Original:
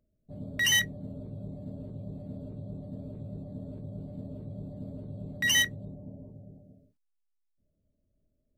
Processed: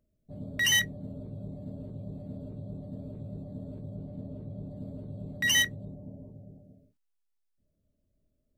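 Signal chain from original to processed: 3.95–4.71 high shelf 4300 Hz -6 dB

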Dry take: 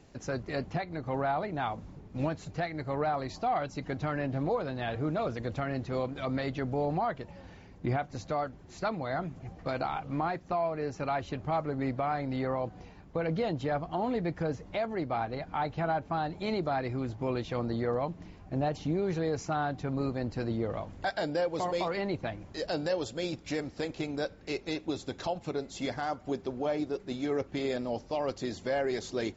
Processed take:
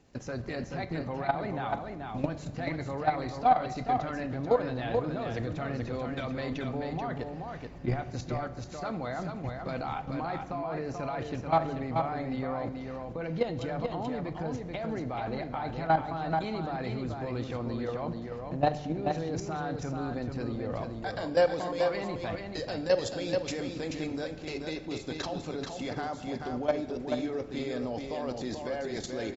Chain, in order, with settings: level quantiser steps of 14 dB; echo 0.434 s -5 dB; on a send at -11 dB: reverb RT60 1.2 s, pre-delay 4 ms; on the sum: gain +7 dB

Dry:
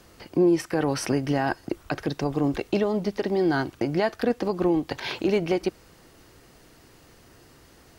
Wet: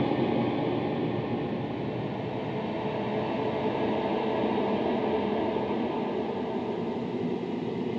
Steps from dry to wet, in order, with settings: bell 270 Hz -9.5 dB 0.75 oct; noise vocoder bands 6; Paulstretch 30×, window 0.25 s, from 5.39; air absorption 330 m

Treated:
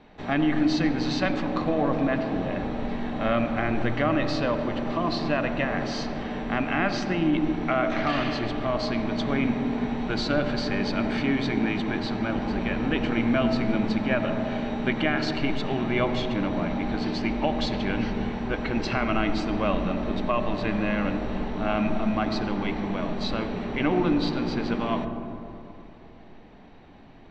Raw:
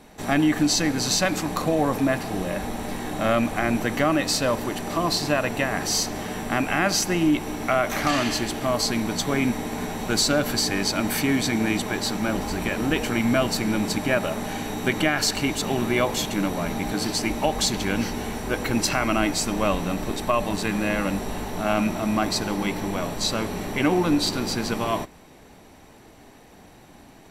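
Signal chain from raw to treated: LPF 3900 Hz 24 dB/oct; on a send: tilt -2.5 dB/oct + reverb RT60 2.8 s, pre-delay 40 ms, DRR 8 dB; on the sum: gain -3.5 dB

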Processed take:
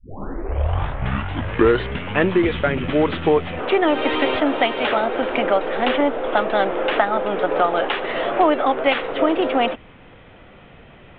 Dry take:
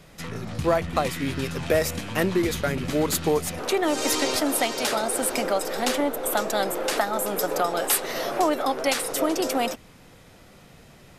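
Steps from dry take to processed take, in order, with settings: tape start at the beginning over 2.30 s; steep low-pass 3400 Hz 72 dB/oct; bell 160 Hz -4 dB 1.1 oct; gain +6.5 dB

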